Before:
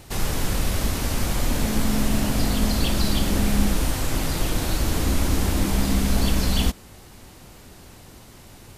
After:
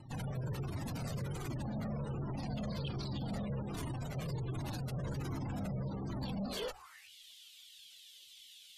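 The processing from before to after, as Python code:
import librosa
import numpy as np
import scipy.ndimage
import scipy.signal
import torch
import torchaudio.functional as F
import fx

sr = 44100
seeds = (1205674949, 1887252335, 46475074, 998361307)

y = fx.filter_sweep_highpass(x, sr, from_hz=130.0, to_hz=3300.0, start_s=6.32, end_s=7.12, q=6.0)
y = fx.tube_stage(y, sr, drive_db=29.0, bias=0.65)
y = fx.hum_notches(y, sr, base_hz=60, count=2)
y = fx.spec_gate(y, sr, threshold_db=-25, keep='strong')
y = fx.comb_cascade(y, sr, direction='falling', hz=1.3)
y = y * librosa.db_to_amplitude(-2.5)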